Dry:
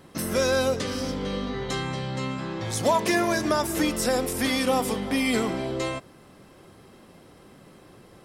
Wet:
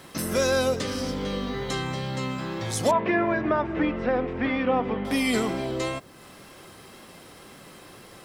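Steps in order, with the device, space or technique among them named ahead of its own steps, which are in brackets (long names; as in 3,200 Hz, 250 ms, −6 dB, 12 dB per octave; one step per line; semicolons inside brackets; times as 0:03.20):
noise-reduction cassette on a plain deck (one half of a high-frequency compander encoder only; tape wow and flutter 21 cents; white noise bed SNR 38 dB)
0:02.91–0:05.05: low-pass filter 2,500 Hz 24 dB per octave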